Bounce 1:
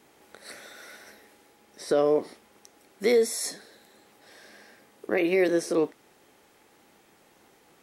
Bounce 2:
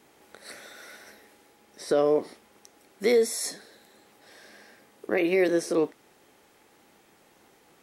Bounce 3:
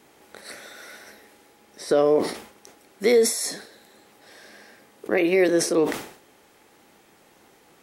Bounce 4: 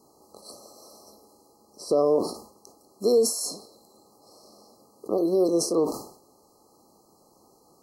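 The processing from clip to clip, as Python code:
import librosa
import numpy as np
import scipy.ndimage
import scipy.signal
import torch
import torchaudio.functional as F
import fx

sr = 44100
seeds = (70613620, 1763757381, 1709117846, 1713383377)

y1 = x
y2 = fx.sustainer(y1, sr, db_per_s=99.0)
y2 = y2 * 10.0 ** (3.5 / 20.0)
y3 = fx.brickwall_bandstop(y2, sr, low_hz=1300.0, high_hz=4000.0)
y3 = y3 * 10.0 ** (-2.5 / 20.0)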